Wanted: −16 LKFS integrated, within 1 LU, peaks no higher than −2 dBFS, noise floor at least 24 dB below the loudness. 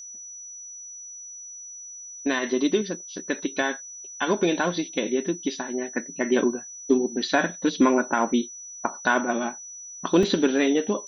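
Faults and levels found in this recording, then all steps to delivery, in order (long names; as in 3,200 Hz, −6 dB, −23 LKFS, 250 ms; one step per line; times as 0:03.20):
number of dropouts 1; longest dropout 2.1 ms; interfering tone 5,900 Hz; level of the tone −38 dBFS; integrated loudness −25.0 LKFS; sample peak −6.0 dBFS; target loudness −16.0 LKFS
→ repair the gap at 0:10.23, 2.1 ms
notch filter 5,900 Hz, Q 30
level +9 dB
brickwall limiter −2 dBFS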